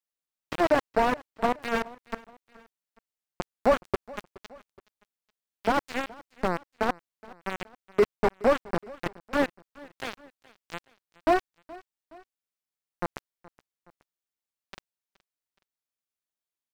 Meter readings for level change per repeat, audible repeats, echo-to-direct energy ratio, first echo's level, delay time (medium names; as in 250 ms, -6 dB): -6.0 dB, 2, -21.0 dB, -22.0 dB, 421 ms